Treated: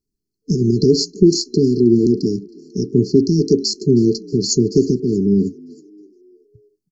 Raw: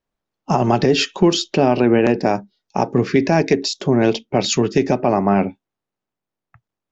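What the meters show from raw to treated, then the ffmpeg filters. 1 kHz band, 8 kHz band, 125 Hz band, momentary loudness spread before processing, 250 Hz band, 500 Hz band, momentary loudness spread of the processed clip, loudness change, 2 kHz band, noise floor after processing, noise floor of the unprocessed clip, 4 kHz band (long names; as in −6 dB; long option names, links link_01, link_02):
below −40 dB, can't be measured, +3.0 dB, 6 LU, +3.0 dB, 0.0 dB, 8 LU, +1.5 dB, below −40 dB, −80 dBFS, −85 dBFS, −0.5 dB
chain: -filter_complex "[0:a]asplit=5[link_01][link_02][link_03][link_04][link_05];[link_02]adelay=316,afreqshift=55,volume=-23.5dB[link_06];[link_03]adelay=632,afreqshift=110,volume=-28.7dB[link_07];[link_04]adelay=948,afreqshift=165,volume=-33.9dB[link_08];[link_05]adelay=1264,afreqshift=220,volume=-39.1dB[link_09];[link_01][link_06][link_07][link_08][link_09]amix=inputs=5:normalize=0,afftfilt=real='re*(1-between(b*sr/4096,450,4100))':imag='im*(1-between(b*sr/4096,450,4100))':win_size=4096:overlap=0.75,volume=3dB"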